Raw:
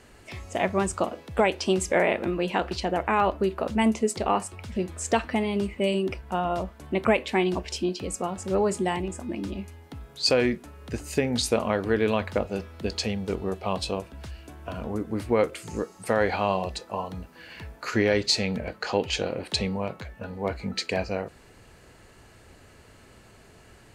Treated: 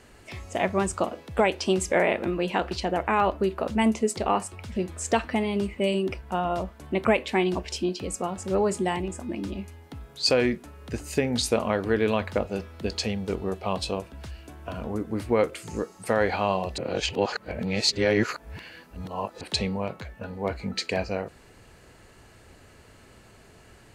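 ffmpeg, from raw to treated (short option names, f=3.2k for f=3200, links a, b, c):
-filter_complex "[0:a]asplit=3[a][b][c];[a]atrim=end=16.782[d];[b]atrim=start=16.778:end=19.412,asetpts=PTS-STARTPTS,areverse[e];[c]atrim=start=19.408[f];[d][e]acrossfade=d=0.004:c1=hsin:c2=hsin[g];[g][f]acrossfade=d=0.004:c1=hsin:c2=hsin"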